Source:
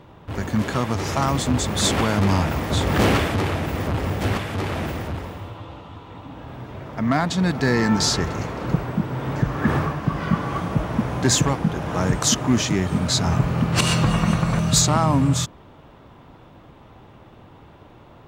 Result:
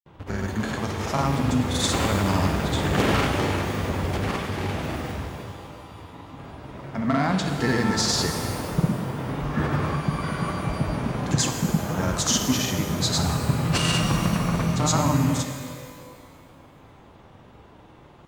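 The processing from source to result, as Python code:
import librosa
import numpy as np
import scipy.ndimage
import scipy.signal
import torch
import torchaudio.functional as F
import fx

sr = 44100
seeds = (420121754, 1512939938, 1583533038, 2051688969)

y = fx.granulator(x, sr, seeds[0], grain_ms=100.0, per_s=20.0, spray_ms=100.0, spread_st=0)
y = fx.rev_shimmer(y, sr, seeds[1], rt60_s=1.8, semitones=12, shimmer_db=-8, drr_db=5.5)
y = F.gain(torch.from_numpy(y), -2.5).numpy()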